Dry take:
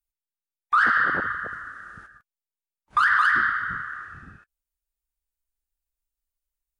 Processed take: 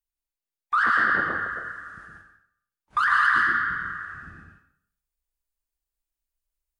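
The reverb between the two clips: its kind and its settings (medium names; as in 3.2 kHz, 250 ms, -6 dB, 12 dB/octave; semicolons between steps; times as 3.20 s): plate-style reverb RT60 0.63 s, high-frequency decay 0.9×, pre-delay 100 ms, DRR 0 dB; trim -3 dB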